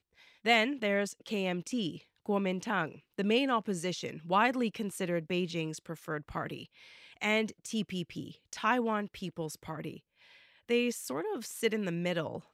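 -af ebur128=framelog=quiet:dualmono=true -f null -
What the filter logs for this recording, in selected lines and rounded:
Integrated loudness:
  I:         -29.8 LUFS
  Threshold: -40.3 LUFS
Loudness range:
  LRA:         3.9 LU
  Threshold: -50.7 LUFS
  LRA low:   -32.7 LUFS
  LRA high:  -28.8 LUFS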